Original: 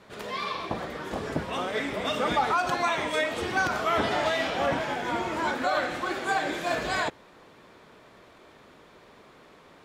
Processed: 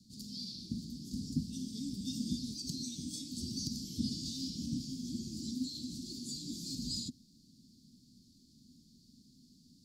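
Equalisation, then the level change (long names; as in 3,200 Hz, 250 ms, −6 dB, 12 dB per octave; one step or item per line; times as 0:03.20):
Chebyshev band-stop filter 250–4,600 Hz, order 5
three-way crossover with the lows and the highs turned down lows −18 dB, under 370 Hz, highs −16 dB, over 3,500 Hz
+14.0 dB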